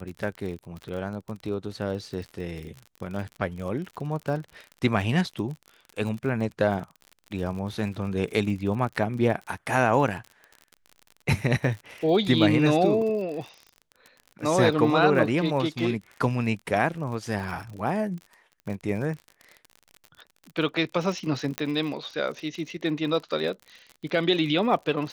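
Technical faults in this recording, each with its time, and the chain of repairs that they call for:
crackle 50/s -34 dBFS
21.58 pop -11 dBFS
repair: de-click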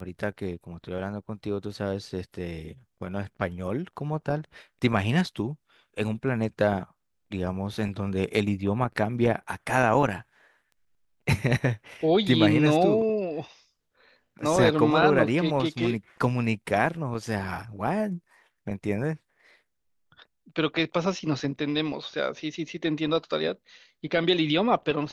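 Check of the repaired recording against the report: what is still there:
none

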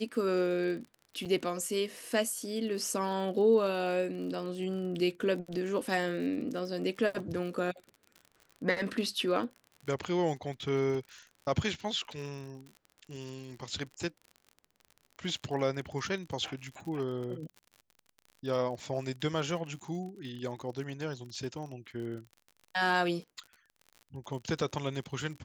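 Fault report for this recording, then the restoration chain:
crackle 49/s -41 dBFS
1.25–1.26 gap 6.8 ms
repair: de-click; interpolate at 1.25, 6.8 ms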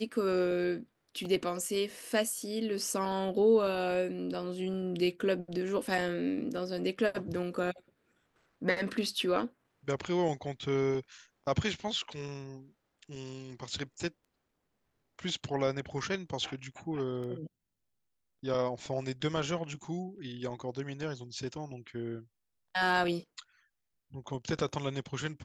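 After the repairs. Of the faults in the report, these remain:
none

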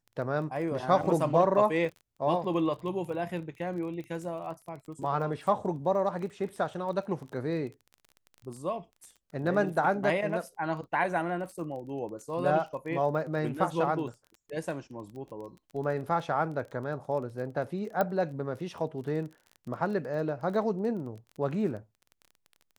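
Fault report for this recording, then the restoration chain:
crackle 21/s -39 dBFS
18.01 pop -15 dBFS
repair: de-click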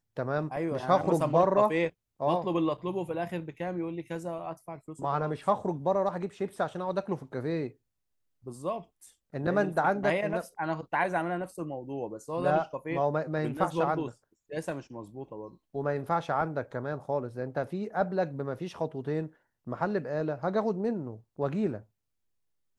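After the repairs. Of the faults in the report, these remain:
none

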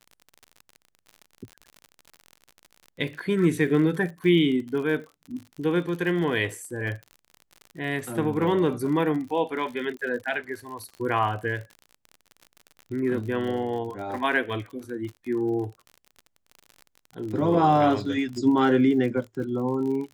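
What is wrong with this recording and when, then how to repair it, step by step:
crackle 51/s -34 dBFS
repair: de-click

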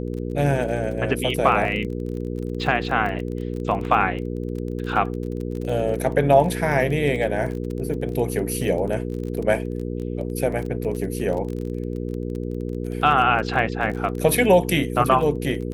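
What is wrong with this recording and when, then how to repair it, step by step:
crackle 25/s -29 dBFS
hum 60 Hz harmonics 8 -28 dBFS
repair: de-click; de-hum 60 Hz, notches 8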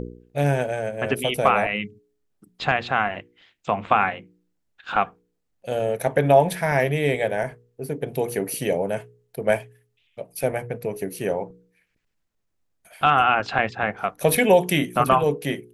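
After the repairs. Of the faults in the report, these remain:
none

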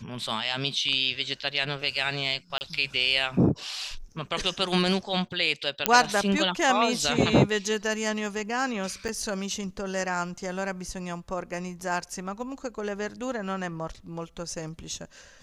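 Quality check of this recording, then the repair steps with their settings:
2.58–2.61 gap 29 ms
5.86 pop -1 dBFS
9.08–9.09 gap 7.7 ms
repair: de-click; interpolate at 2.58, 29 ms; interpolate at 9.08, 7.7 ms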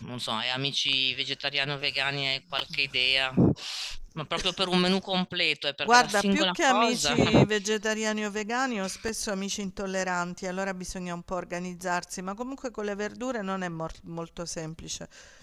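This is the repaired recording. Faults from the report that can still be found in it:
none

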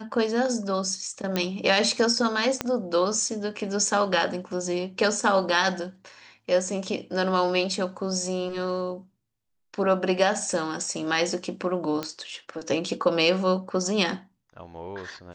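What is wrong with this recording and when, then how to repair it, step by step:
1.36 pop -11 dBFS
2.61 pop -10 dBFS
12.03 pop -15 dBFS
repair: de-click

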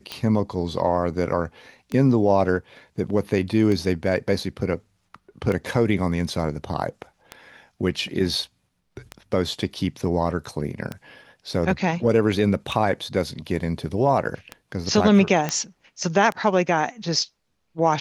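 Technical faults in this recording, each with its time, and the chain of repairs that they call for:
tick 33 1/3 rpm -15 dBFS
15.49 pop -9 dBFS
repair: de-click

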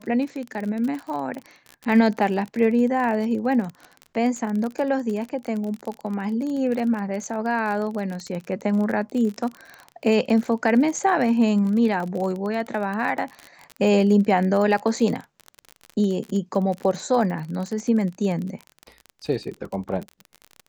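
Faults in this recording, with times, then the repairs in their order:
crackle 35/s -28 dBFS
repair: de-click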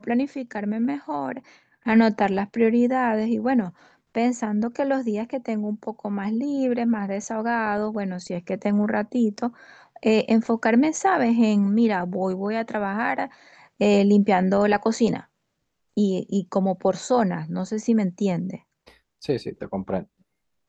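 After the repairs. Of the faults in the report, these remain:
none

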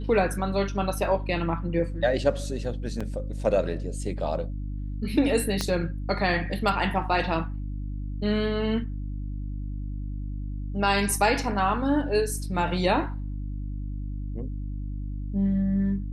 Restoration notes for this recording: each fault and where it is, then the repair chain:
hum 50 Hz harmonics 6 -32 dBFS
3–3.01 gap 5.1 ms
5.61 pop -12 dBFS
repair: de-click; de-hum 50 Hz, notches 6; interpolate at 3, 5.1 ms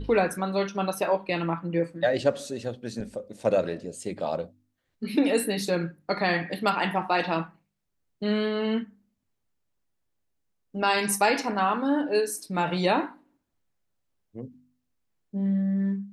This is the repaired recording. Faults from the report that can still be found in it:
5.61 pop

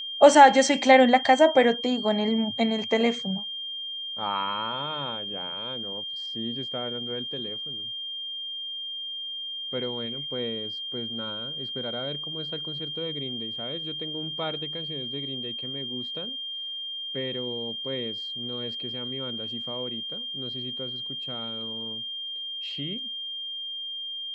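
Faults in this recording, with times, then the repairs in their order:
tone 3200 Hz -32 dBFS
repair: notch 3200 Hz, Q 30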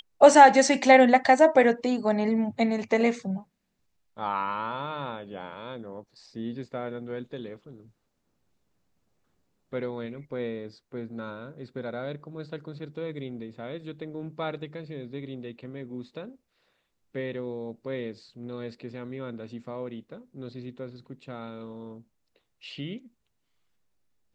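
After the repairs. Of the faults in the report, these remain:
none

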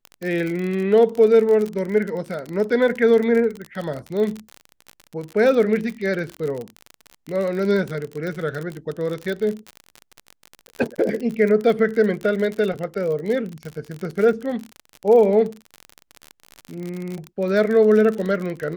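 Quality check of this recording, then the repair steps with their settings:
crackle 45/s -25 dBFS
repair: de-click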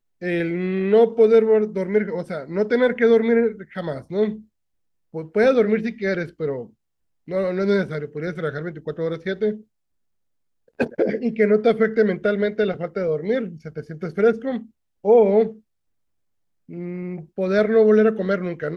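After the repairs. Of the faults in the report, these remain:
none

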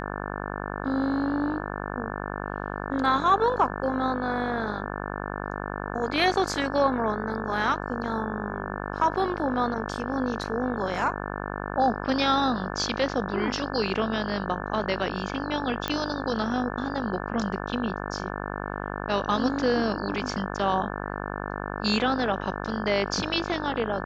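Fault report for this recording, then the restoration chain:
buzz 50 Hz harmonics 35 -33 dBFS
15.88 pop -12 dBFS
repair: de-click; de-hum 50 Hz, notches 35

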